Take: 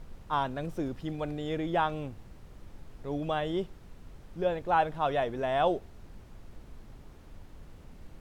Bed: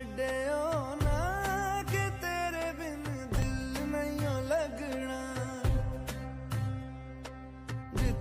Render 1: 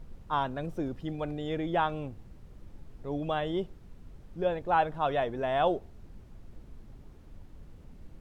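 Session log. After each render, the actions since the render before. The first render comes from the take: denoiser 6 dB, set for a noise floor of -52 dBFS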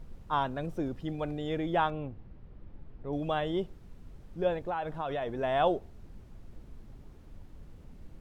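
1.9–3.13 air absorption 280 m; 4.63–5.38 compressor 10:1, threshold -29 dBFS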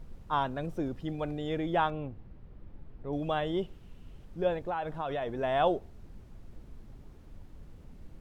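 3.62–4.25 bell 2900 Hz +10 dB 0.43 oct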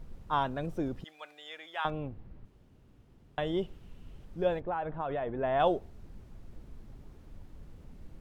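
1.04–1.85 HPF 1400 Hz; 2.45–3.38 room tone; 4.6–5.6 LPF 2100 Hz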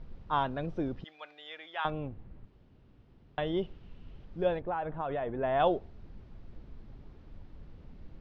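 LPF 4800 Hz 24 dB/oct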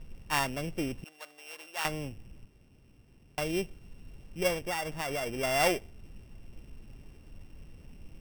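sample sorter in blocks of 16 samples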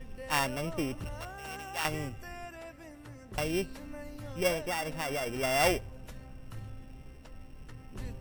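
add bed -11.5 dB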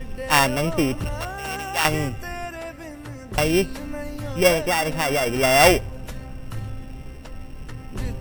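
gain +12 dB

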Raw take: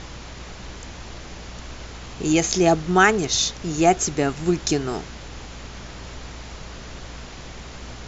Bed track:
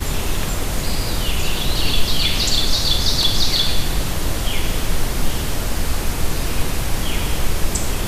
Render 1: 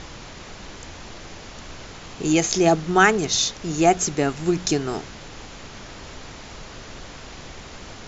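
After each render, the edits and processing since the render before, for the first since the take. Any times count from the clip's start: de-hum 60 Hz, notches 4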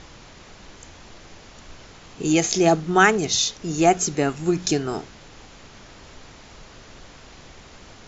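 noise print and reduce 6 dB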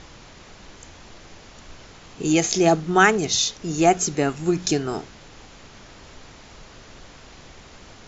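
nothing audible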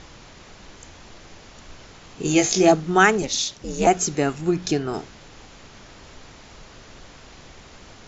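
2.23–2.72 doubler 21 ms -4 dB; 3.22–3.87 ring modulator 130 Hz; 4.41–4.94 air absorption 86 m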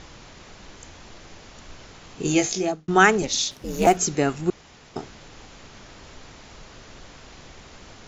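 2.23–2.88 fade out; 3.51–3.97 running maximum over 3 samples; 4.5–4.96 room tone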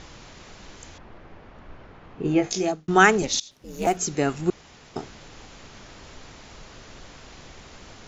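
0.98–2.51 LPF 1700 Hz; 3.4–4.4 fade in linear, from -22 dB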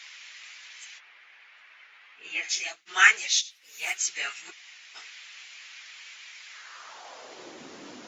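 phase scrambler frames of 50 ms; high-pass sweep 2200 Hz -> 270 Hz, 6.45–7.64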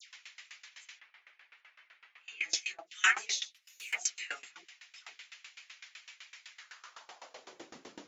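dispersion lows, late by 0.15 s, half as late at 1200 Hz; dB-ramp tremolo decaying 7.9 Hz, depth 23 dB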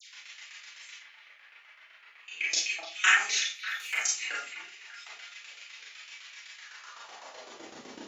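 delay with a stepping band-pass 0.297 s, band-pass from 2900 Hz, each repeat -0.7 oct, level -10 dB; Schroeder reverb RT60 0.32 s, combs from 27 ms, DRR -4 dB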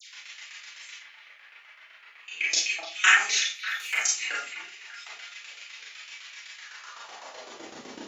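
gain +3.5 dB

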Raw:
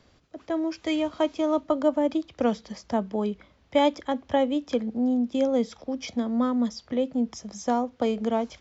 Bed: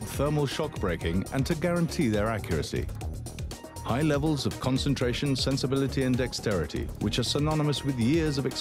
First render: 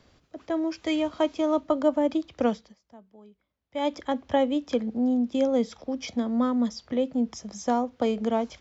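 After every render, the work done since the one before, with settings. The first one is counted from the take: 2.46–3.99 dip -24 dB, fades 0.29 s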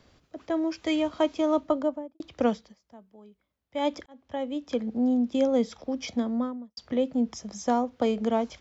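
1.62–2.2 studio fade out; 4.06–5 fade in; 6.16–6.77 studio fade out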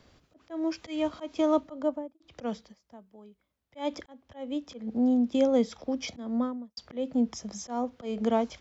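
auto swell 0.194 s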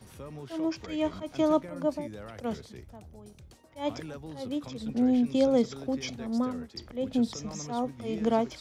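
add bed -16.5 dB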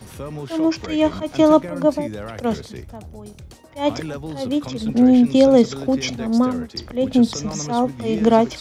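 gain +11.5 dB; limiter -3 dBFS, peak gain reduction 1 dB

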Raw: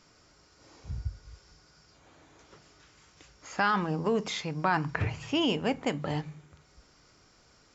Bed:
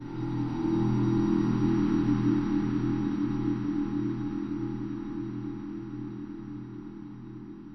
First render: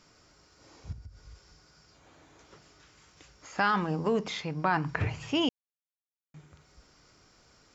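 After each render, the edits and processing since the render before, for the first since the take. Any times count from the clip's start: 0.92–3.56 compressor 4:1, threshold -44 dBFS; 4.19–4.86 air absorption 72 m; 5.49–6.34 mute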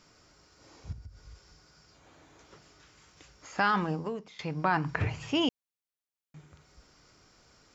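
3.89–4.39 fade out quadratic, to -18.5 dB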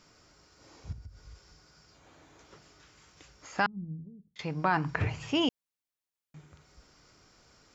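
3.66–4.36 ladder low-pass 220 Hz, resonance 25%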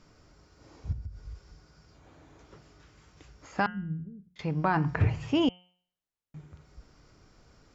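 tilt -2 dB/oct; de-hum 179.8 Hz, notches 19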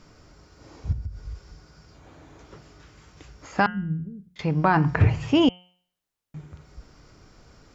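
gain +6.5 dB

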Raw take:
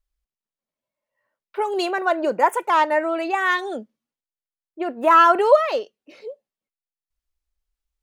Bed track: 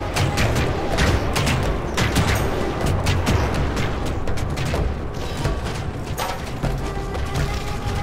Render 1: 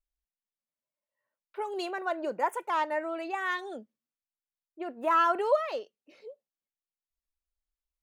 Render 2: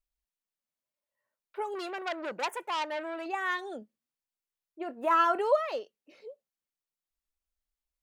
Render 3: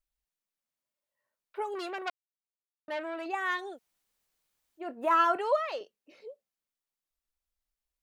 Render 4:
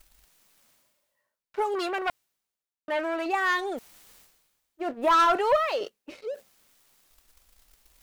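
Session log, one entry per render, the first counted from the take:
gain -11 dB
1.75–3.26 core saturation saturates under 3100 Hz; 3.79–5.39 doubler 24 ms -13.5 dB
2.1–2.88 mute; 3.74–4.81 room tone, crossfade 0.10 s; 5.36–5.81 weighting filter A
reverse; upward compressor, threshold -35 dBFS; reverse; sample leveller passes 2

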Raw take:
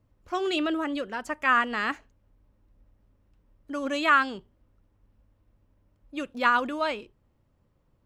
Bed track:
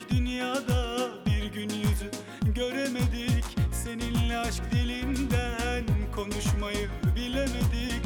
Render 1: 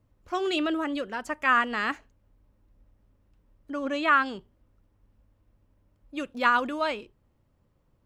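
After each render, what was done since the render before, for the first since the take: 3.71–4.26 LPF 2900 Hz 6 dB/oct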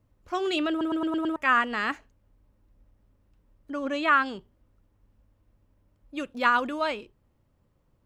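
0.7 stutter in place 0.11 s, 6 plays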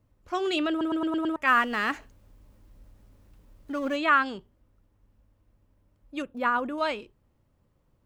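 1.47–3.96 G.711 law mismatch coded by mu; 6.22–6.78 bell 4800 Hz -13.5 dB 2.3 oct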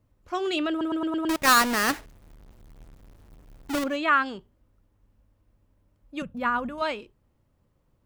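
1.29–3.84 half-waves squared off; 6.22–6.82 resonant low shelf 230 Hz +10 dB, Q 3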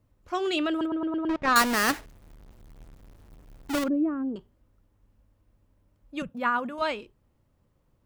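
0.86–1.56 tape spacing loss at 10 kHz 33 dB; 3.88–4.36 synth low-pass 330 Hz, resonance Q 2.6; 6.29–6.79 HPF 200 Hz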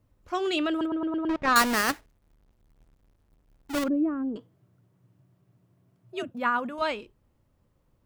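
1.81–3.76 power-law curve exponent 1.4; 4.37–6.31 frequency shift +81 Hz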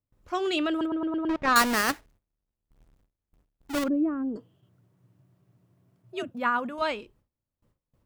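4.37–4.66 spectral repair 2100–4400 Hz before; gate with hold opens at -57 dBFS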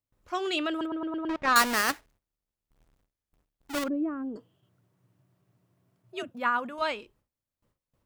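low shelf 430 Hz -6.5 dB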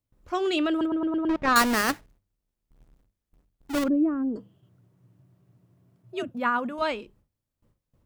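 low shelf 430 Hz +10.5 dB; notches 50/100/150/200 Hz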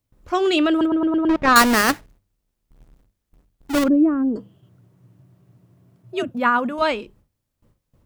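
gain +7 dB

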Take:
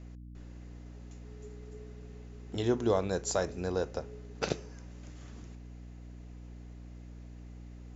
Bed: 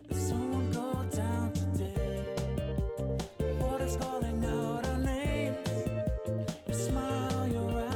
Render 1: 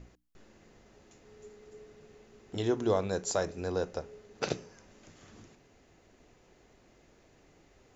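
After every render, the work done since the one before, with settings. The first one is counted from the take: notches 60/120/180/240/300 Hz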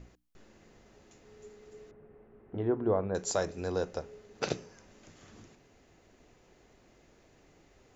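1.91–3.15 Bessel low-pass 1300 Hz, order 4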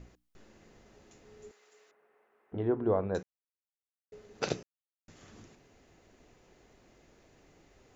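1.51–2.52 HPF 920 Hz; 3.23–4.12 mute; 4.63–5.08 mute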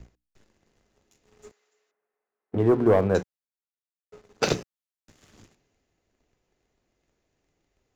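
sample leveller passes 2; three-band expander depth 40%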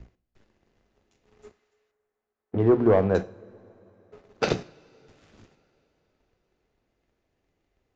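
air absorption 120 m; two-slope reverb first 0.49 s, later 4.1 s, from -20 dB, DRR 13 dB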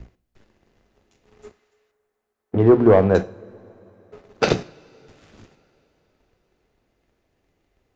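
gain +6 dB

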